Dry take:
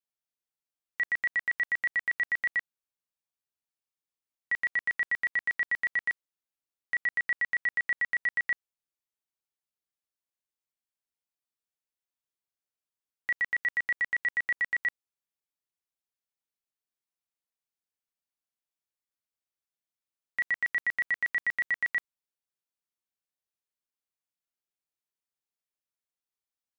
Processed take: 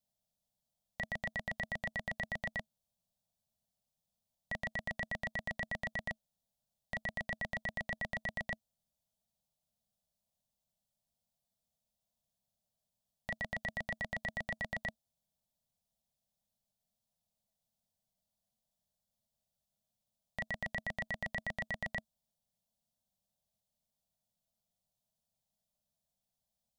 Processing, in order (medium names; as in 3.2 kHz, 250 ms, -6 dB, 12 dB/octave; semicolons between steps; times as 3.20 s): FFT filter 130 Hz 0 dB, 220 Hz +2 dB, 320 Hz -28 dB, 640 Hz 0 dB, 1.4 kHz -27 dB, 2.2 kHz -27 dB, 3.4 kHz -11 dB; trim +15.5 dB